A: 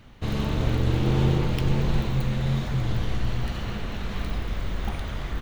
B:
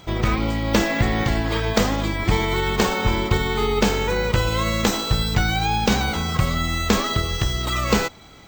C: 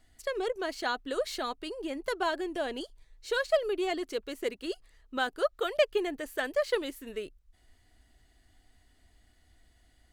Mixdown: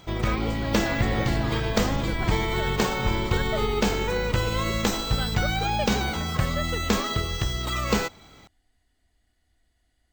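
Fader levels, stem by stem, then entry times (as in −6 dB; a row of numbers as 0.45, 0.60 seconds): −9.5, −4.5, −6.5 decibels; 0.25, 0.00, 0.00 seconds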